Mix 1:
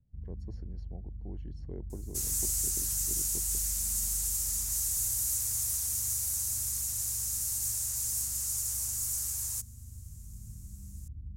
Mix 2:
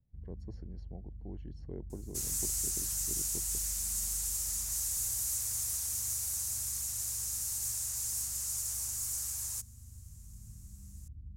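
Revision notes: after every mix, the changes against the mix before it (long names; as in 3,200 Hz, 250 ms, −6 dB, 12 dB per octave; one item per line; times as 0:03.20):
first sound −4.5 dB
master: add high-shelf EQ 8,200 Hz −5.5 dB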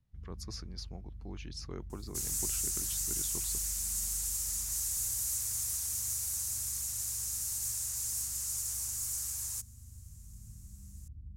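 speech: remove moving average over 36 samples
master: add parametric band 590 Hz −3.5 dB 1 octave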